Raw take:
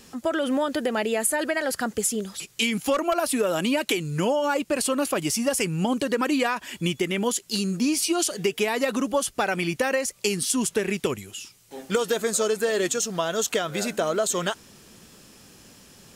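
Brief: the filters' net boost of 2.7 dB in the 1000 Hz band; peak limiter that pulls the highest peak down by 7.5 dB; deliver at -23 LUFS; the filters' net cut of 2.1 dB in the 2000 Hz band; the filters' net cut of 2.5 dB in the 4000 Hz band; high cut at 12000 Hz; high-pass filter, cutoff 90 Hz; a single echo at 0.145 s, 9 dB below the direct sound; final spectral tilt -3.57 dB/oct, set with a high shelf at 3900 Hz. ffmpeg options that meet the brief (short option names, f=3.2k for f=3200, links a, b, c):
-af "highpass=90,lowpass=12k,equalizer=f=1k:t=o:g=4.5,equalizer=f=2k:t=o:g=-4,highshelf=f=3.9k:g=3.5,equalizer=f=4k:t=o:g=-4.5,alimiter=limit=-15dB:level=0:latency=1,aecho=1:1:145:0.355,volume=2dB"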